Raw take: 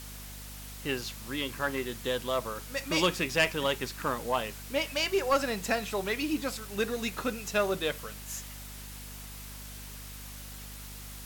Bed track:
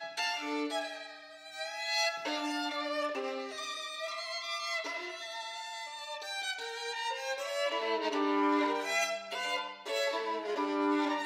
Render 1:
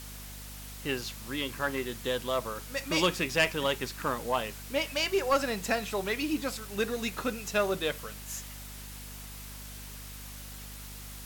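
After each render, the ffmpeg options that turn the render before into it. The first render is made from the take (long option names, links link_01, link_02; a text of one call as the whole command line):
ffmpeg -i in.wav -af anull out.wav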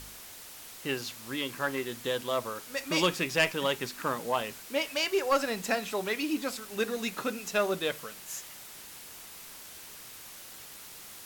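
ffmpeg -i in.wav -af "bandreject=frequency=50:width_type=h:width=4,bandreject=frequency=100:width_type=h:width=4,bandreject=frequency=150:width_type=h:width=4,bandreject=frequency=200:width_type=h:width=4,bandreject=frequency=250:width_type=h:width=4" out.wav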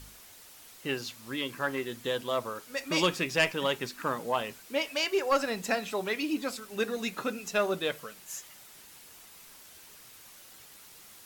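ffmpeg -i in.wav -af "afftdn=noise_reduction=6:noise_floor=-47" out.wav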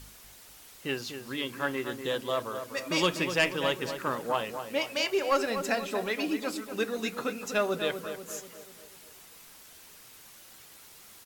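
ffmpeg -i in.wav -filter_complex "[0:a]asplit=2[link_01][link_02];[link_02]adelay=244,lowpass=frequency=1800:poles=1,volume=-8dB,asplit=2[link_03][link_04];[link_04]adelay=244,lowpass=frequency=1800:poles=1,volume=0.53,asplit=2[link_05][link_06];[link_06]adelay=244,lowpass=frequency=1800:poles=1,volume=0.53,asplit=2[link_07][link_08];[link_08]adelay=244,lowpass=frequency=1800:poles=1,volume=0.53,asplit=2[link_09][link_10];[link_10]adelay=244,lowpass=frequency=1800:poles=1,volume=0.53,asplit=2[link_11][link_12];[link_12]adelay=244,lowpass=frequency=1800:poles=1,volume=0.53[link_13];[link_01][link_03][link_05][link_07][link_09][link_11][link_13]amix=inputs=7:normalize=0" out.wav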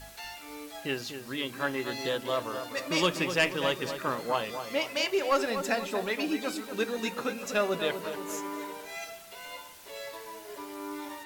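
ffmpeg -i in.wav -i bed.wav -filter_complex "[1:a]volume=-9dB[link_01];[0:a][link_01]amix=inputs=2:normalize=0" out.wav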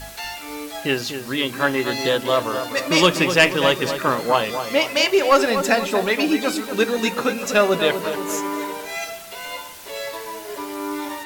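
ffmpeg -i in.wav -af "volume=11dB" out.wav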